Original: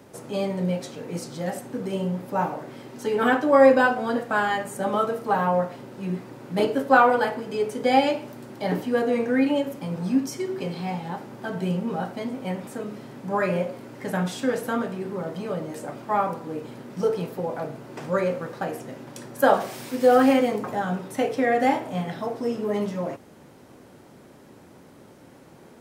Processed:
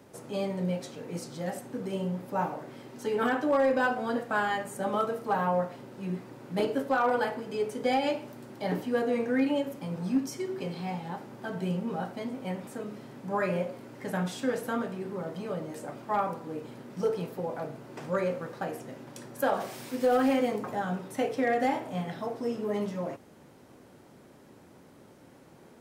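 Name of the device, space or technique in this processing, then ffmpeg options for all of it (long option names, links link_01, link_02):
limiter into clipper: -af "alimiter=limit=-11.5dB:level=0:latency=1:release=83,asoftclip=type=hard:threshold=-13.5dB,volume=-5dB"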